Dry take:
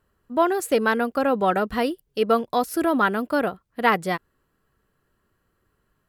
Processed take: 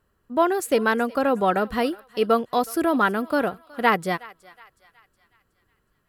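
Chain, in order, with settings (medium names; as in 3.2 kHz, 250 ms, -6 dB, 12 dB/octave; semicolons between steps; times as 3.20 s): thinning echo 368 ms, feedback 49%, high-pass 830 Hz, level -20 dB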